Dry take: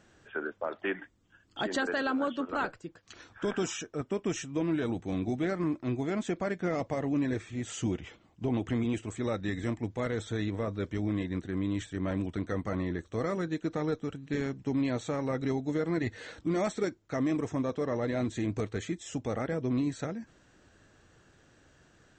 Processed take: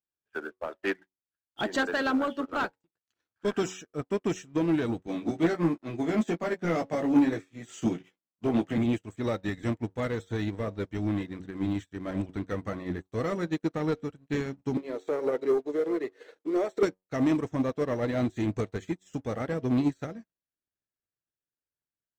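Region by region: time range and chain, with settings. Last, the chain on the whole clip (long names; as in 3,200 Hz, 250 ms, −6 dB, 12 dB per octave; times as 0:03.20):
0:02.71–0:03.45: high-pass filter 69 Hz + downward compressor 5 to 1, threshold −46 dBFS
0:05.07–0:08.78: high-pass filter 140 Hz 24 dB per octave + double-tracking delay 18 ms −4 dB
0:14.77–0:16.83: high-shelf EQ 5,100 Hz −7 dB + downward compressor, threshold −32 dBFS + high-pass with resonance 410 Hz, resonance Q 4.2
whole clip: hum removal 93.14 Hz, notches 10; leveller curve on the samples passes 2; expander for the loud parts 2.5 to 1, over −47 dBFS; level +3 dB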